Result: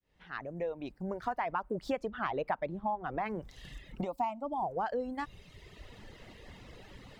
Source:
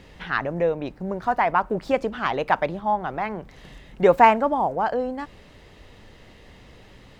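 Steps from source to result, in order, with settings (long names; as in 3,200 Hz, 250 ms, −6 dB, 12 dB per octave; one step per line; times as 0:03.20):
fade in at the beginning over 2.25 s
0:02.08–0:03.26: high-shelf EQ 2,900 Hz −10.5 dB
reverb reduction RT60 1.2 s
downward compressor 5 to 1, threshold −31 dBFS, peak gain reduction 19.5 dB
0:04.01–0:04.63: phaser with its sweep stopped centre 440 Hz, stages 6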